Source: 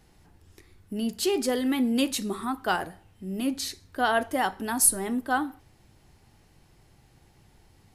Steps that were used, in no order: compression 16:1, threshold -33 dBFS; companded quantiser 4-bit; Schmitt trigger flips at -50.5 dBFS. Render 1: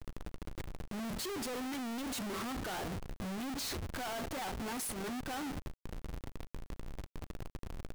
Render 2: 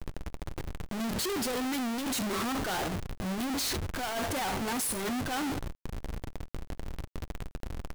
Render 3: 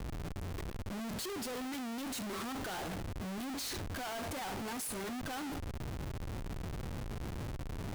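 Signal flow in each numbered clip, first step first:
compression > Schmitt trigger > companded quantiser; Schmitt trigger > compression > companded quantiser; compression > companded quantiser > Schmitt trigger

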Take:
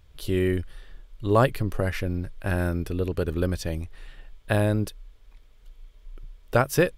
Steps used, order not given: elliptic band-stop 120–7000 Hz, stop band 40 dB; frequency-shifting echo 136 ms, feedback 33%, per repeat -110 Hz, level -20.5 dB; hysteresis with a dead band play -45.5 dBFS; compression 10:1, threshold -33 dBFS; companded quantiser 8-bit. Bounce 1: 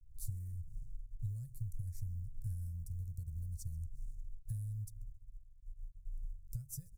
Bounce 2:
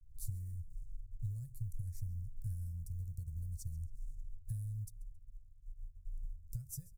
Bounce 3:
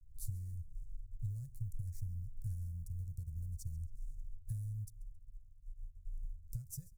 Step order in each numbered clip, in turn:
frequency-shifting echo > hysteresis with a dead band > companded quantiser > compression > elliptic band-stop; hysteresis with a dead band > compression > companded quantiser > frequency-shifting echo > elliptic band-stop; compression > companded quantiser > hysteresis with a dead band > frequency-shifting echo > elliptic band-stop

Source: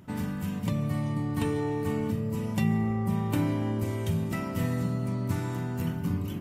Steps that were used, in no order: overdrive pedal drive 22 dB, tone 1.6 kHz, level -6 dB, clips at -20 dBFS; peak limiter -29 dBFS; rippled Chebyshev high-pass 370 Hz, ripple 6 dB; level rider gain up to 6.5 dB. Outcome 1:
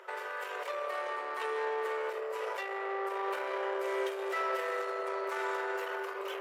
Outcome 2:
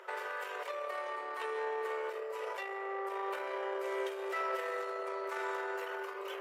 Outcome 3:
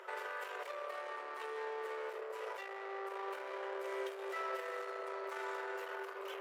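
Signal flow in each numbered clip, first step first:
peak limiter > level rider > overdrive pedal > rippled Chebyshev high-pass; level rider > peak limiter > overdrive pedal > rippled Chebyshev high-pass; level rider > overdrive pedal > peak limiter > rippled Chebyshev high-pass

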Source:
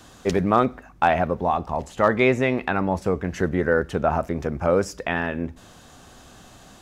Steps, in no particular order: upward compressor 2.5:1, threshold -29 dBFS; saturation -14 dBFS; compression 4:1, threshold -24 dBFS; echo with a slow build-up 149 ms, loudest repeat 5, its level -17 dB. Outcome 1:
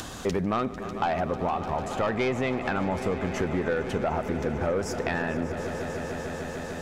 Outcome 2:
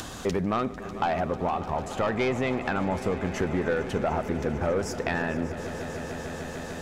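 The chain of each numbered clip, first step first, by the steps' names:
saturation > echo with a slow build-up > compression > upward compressor; saturation > compression > echo with a slow build-up > upward compressor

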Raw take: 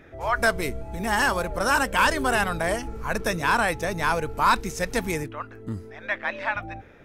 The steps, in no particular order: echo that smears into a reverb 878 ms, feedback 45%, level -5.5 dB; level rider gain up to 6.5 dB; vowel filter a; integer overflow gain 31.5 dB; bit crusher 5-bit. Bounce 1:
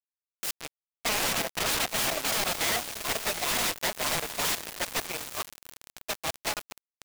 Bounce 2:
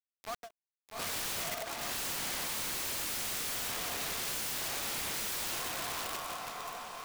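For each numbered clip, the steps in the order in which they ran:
vowel filter > integer overflow > level rider > echo that smears into a reverb > bit crusher; vowel filter > bit crusher > echo that smears into a reverb > level rider > integer overflow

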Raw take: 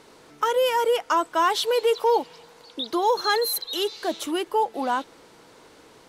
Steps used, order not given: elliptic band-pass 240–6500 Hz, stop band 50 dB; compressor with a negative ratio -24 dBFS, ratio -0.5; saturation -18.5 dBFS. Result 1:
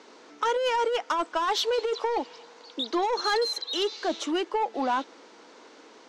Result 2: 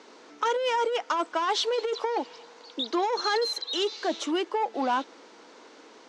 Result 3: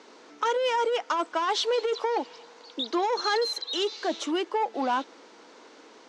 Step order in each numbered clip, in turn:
elliptic band-pass > saturation > compressor with a negative ratio; saturation > compressor with a negative ratio > elliptic band-pass; saturation > elliptic band-pass > compressor with a negative ratio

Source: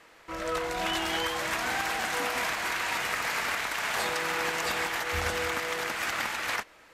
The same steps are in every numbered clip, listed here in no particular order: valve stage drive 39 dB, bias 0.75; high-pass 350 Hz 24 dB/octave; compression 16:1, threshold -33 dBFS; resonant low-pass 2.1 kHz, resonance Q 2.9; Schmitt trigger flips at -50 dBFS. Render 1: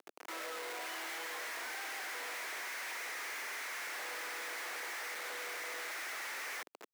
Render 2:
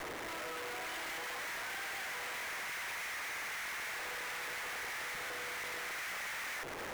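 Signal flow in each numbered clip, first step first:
compression > resonant low-pass > valve stage > Schmitt trigger > high-pass; compression > resonant low-pass > Schmitt trigger > high-pass > valve stage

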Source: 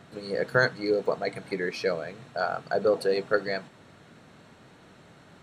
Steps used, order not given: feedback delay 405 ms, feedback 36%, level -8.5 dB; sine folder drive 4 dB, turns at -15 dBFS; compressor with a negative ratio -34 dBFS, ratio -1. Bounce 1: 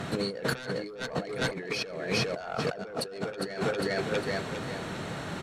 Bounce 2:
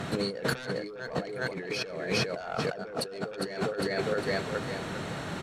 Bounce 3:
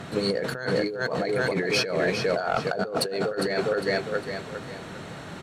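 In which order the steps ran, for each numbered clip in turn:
sine folder > feedback delay > compressor with a negative ratio; feedback delay > sine folder > compressor with a negative ratio; feedback delay > compressor with a negative ratio > sine folder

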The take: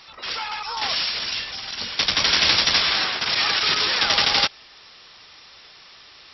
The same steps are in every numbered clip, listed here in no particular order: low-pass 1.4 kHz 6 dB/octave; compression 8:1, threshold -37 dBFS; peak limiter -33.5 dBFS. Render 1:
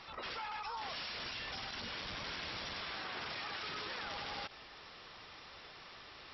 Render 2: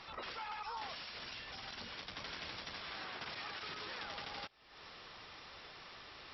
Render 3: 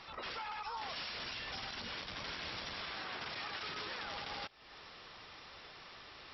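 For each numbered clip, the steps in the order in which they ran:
low-pass > peak limiter > compression; compression > low-pass > peak limiter; low-pass > compression > peak limiter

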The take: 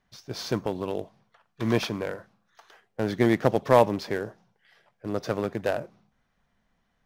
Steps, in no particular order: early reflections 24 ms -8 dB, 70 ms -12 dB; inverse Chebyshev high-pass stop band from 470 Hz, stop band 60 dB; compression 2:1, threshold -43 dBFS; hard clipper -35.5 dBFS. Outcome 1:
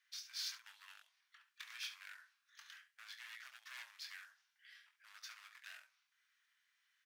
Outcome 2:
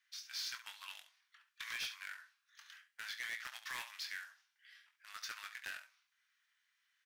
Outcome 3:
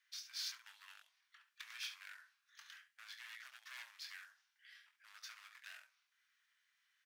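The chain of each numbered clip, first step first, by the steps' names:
compression > early reflections > hard clipper > inverse Chebyshev high-pass; inverse Chebyshev high-pass > compression > early reflections > hard clipper; early reflections > compression > hard clipper > inverse Chebyshev high-pass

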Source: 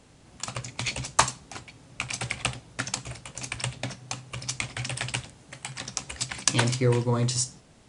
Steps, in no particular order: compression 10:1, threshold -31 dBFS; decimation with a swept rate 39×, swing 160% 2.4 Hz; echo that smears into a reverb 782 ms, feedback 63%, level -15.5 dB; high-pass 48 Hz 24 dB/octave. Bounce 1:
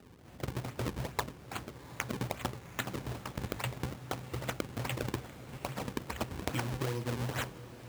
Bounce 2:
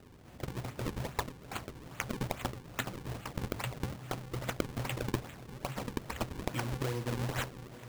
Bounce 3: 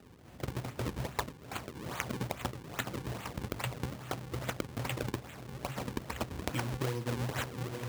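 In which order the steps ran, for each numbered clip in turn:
decimation with a swept rate > high-pass > compression > echo that smears into a reverb; high-pass > compression > echo that smears into a reverb > decimation with a swept rate; echo that smears into a reverb > decimation with a swept rate > compression > high-pass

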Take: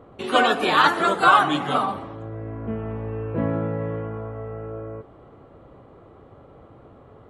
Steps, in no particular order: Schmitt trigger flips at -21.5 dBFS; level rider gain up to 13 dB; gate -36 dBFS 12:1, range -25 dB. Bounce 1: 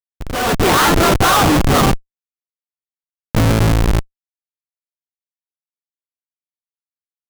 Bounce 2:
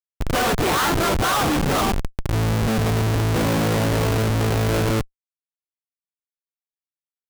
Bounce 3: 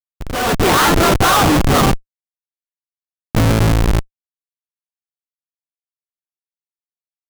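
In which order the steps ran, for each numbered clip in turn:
Schmitt trigger > level rider > gate; level rider > Schmitt trigger > gate; Schmitt trigger > gate > level rider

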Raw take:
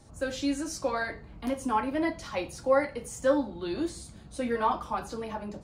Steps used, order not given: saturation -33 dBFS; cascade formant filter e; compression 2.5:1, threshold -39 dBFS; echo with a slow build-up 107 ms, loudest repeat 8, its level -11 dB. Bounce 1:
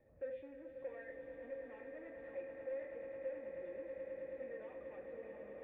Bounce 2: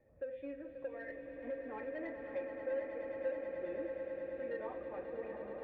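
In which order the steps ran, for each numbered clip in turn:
saturation > echo with a slow build-up > compression > cascade formant filter; cascade formant filter > compression > saturation > echo with a slow build-up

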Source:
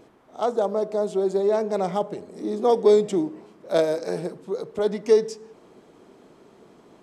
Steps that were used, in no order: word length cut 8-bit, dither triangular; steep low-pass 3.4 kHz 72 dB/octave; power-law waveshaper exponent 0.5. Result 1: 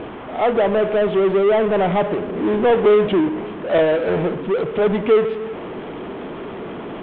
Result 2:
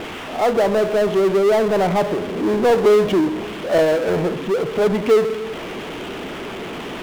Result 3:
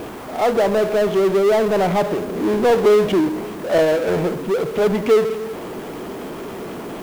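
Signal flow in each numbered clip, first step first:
power-law waveshaper > word length cut > steep low-pass; word length cut > steep low-pass > power-law waveshaper; steep low-pass > power-law waveshaper > word length cut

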